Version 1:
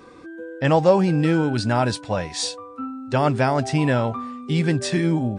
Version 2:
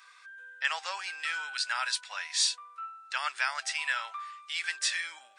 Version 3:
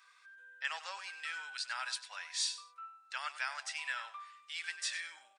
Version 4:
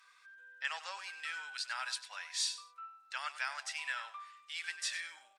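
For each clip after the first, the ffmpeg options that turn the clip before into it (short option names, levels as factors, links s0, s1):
-af "highpass=f=1400:w=0.5412,highpass=f=1400:w=1.3066"
-af "aecho=1:1:97|194:0.211|0.0402,volume=0.398"
-ar 48000 -c:a sbc -b:a 128k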